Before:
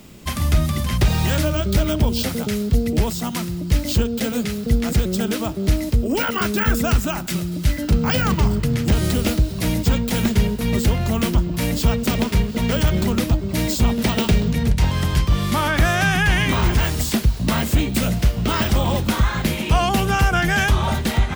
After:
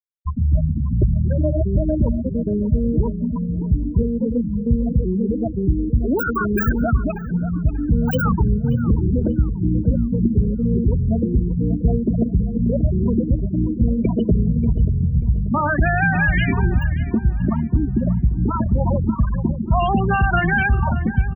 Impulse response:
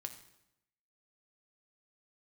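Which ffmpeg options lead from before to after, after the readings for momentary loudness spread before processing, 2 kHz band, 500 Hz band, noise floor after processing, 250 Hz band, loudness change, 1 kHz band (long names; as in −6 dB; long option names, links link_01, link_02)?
4 LU, −1.0 dB, −0.5 dB, −27 dBFS, +2.0 dB, 0.0 dB, −1.0 dB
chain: -filter_complex "[0:a]afftfilt=real='re*gte(hypot(re,im),0.316)':imag='im*gte(hypot(re,im),0.316)':win_size=1024:overlap=0.75,bandreject=frequency=50:width_type=h:width=6,bandreject=frequency=100:width_type=h:width=6,bandreject=frequency=150:width_type=h:width=6,bandreject=frequency=200:width_type=h:width=6,asplit=2[link_01][link_02];[link_02]acompressor=threshold=-26dB:ratio=6,volume=3dB[link_03];[link_01][link_03]amix=inputs=2:normalize=0,asplit=2[link_04][link_05];[link_05]adelay=586,lowpass=frequency=2100:poles=1,volume=-13dB,asplit=2[link_06][link_07];[link_07]adelay=586,lowpass=frequency=2100:poles=1,volume=0.37,asplit=2[link_08][link_09];[link_09]adelay=586,lowpass=frequency=2100:poles=1,volume=0.37,asplit=2[link_10][link_11];[link_11]adelay=586,lowpass=frequency=2100:poles=1,volume=0.37[link_12];[link_04][link_06][link_08][link_10][link_12]amix=inputs=5:normalize=0,volume=-1.5dB"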